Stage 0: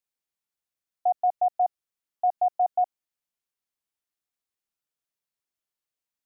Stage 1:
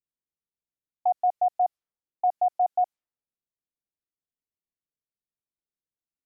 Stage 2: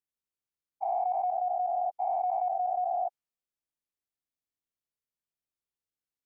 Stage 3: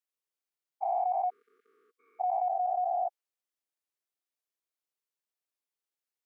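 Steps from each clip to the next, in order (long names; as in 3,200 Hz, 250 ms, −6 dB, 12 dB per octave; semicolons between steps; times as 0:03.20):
low-pass that shuts in the quiet parts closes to 410 Hz, open at −23.5 dBFS
every bin's largest magnitude spread in time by 480 ms; level −8.5 dB
time-frequency box erased 0:01.30–0:02.20, 490–1,100 Hz; high-pass filter 320 Hz 24 dB per octave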